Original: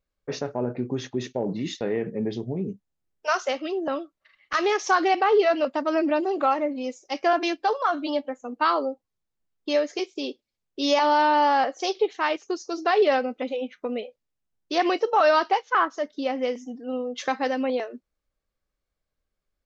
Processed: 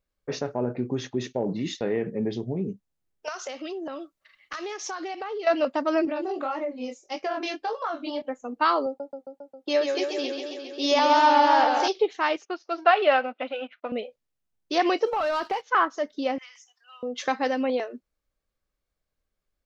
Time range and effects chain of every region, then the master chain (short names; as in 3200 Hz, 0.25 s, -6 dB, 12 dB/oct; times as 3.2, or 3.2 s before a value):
3.28–5.47 high shelf 4200 Hz +6.5 dB + compressor, threshold -31 dBFS
6.05–8.22 chorus 1.7 Hz, delay 18.5 ms, depth 6.6 ms + compressor 4:1, threshold -25 dBFS
8.86–11.88 HPF 230 Hz 6 dB/oct + warbling echo 0.135 s, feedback 74%, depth 108 cents, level -5.5 dB
12.45–13.92 G.711 law mismatch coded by A + speaker cabinet 330–3900 Hz, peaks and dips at 440 Hz -9 dB, 660 Hz +8 dB, 1400 Hz +8 dB, 2700 Hz +6 dB
15.06–15.66 sample leveller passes 1 + compressor 4:1, threshold -25 dBFS
16.38–17.03 steep high-pass 1100 Hz + compressor 12:1, threshold -42 dBFS
whole clip: dry